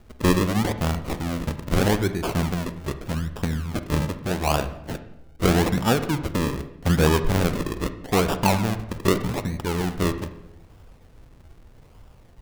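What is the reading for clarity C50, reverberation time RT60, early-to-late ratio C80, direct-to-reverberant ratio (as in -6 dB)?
11.5 dB, 0.85 s, 14.0 dB, 10.5 dB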